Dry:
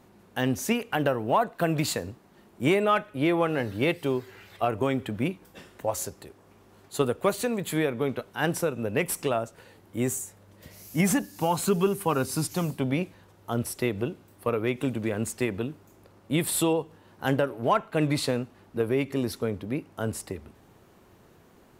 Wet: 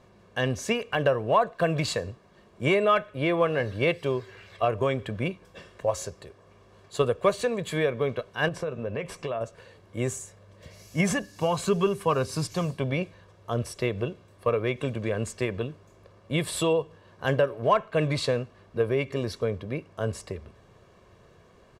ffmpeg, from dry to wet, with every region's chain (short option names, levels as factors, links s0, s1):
-filter_complex "[0:a]asettb=1/sr,asplit=3[s0][s1][s2];[s0]atrim=end=8.484[s3];[s1]atrim=start=8.48:end=9.41,asetpts=PTS-STARTPTS,afade=t=in:d=0.004:c=qsin,afade=t=out:st=0.926:d=0.004:c=qsin,aemphasis=mode=reproduction:type=50kf,acompressor=threshold=0.0447:ratio=6:attack=3.2:release=140:knee=1:detection=peak,asplit=2[s4][s5];[s5]adelay=13,volume=0.237[s6];[s4][s6]amix=inputs=2:normalize=0,atrim=end_sample=41013[s7];[s2]atrim=start=9.406[s8];[s3][s7]acrossfade=d=0.004:c1=hsin:c2=qsin[s9];[s9][s8]acrossfade=d=0.004:c1=qsin:c2=hsin,lowpass=6500,aecho=1:1:1.8:0.54"